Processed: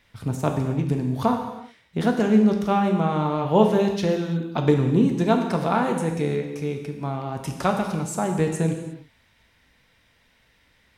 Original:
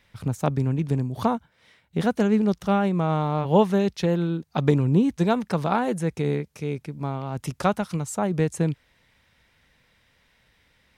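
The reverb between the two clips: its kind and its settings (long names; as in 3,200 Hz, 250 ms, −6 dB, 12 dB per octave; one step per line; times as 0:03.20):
reverb whose tail is shaped and stops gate 380 ms falling, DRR 3 dB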